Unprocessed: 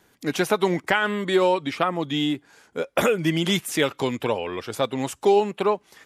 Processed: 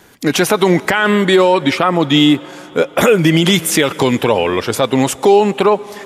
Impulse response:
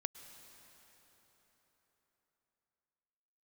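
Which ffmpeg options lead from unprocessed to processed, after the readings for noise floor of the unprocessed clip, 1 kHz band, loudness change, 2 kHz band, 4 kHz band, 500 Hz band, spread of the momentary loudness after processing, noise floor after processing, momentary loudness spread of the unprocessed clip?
−61 dBFS, +9.0 dB, +10.5 dB, +9.5 dB, +11.0 dB, +9.5 dB, 6 LU, −37 dBFS, 7 LU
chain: -filter_complex "[0:a]asplit=2[link_01][link_02];[1:a]atrim=start_sample=2205[link_03];[link_02][link_03]afir=irnorm=-1:irlink=0,volume=-9dB[link_04];[link_01][link_04]amix=inputs=2:normalize=0,alimiter=level_in=13dB:limit=-1dB:release=50:level=0:latency=1,volume=-1dB"

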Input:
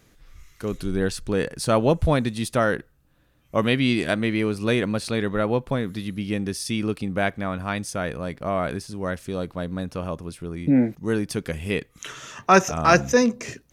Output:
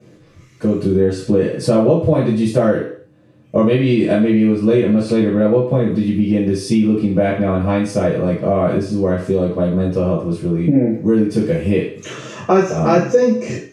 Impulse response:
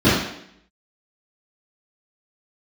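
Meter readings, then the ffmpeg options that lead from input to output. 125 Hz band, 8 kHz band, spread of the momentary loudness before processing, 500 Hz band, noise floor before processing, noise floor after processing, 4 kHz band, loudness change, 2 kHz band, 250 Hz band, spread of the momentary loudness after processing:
+9.0 dB, −2.5 dB, 12 LU, +9.0 dB, −61 dBFS, −48 dBFS, −1.5 dB, +8.0 dB, −2.5 dB, +10.0 dB, 5 LU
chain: -filter_complex "[1:a]atrim=start_sample=2205,asetrate=74970,aresample=44100[link_01];[0:a][link_01]afir=irnorm=-1:irlink=0,acompressor=threshold=0dB:ratio=3,volume=-13dB"

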